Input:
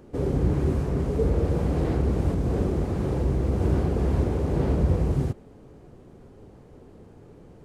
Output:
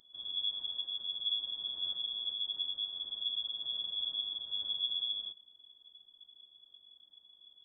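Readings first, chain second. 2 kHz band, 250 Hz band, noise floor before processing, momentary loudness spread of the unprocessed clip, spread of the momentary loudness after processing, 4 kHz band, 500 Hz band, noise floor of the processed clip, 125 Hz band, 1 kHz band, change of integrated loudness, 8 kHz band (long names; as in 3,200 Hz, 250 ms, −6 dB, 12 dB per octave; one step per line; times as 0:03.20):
below −25 dB, below −40 dB, −50 dBFS, 3 LU, 4 LU, +21.0 dB, below −35 dB, −65 dBFS, below −40 dB, below −25 dB, −9.5 dB, can't be measured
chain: inverse Chebyshev band-stop filter 170–860 Hz, stop band 70 dB
voice inversion scrambler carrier 3,400 Hz
level −3 dB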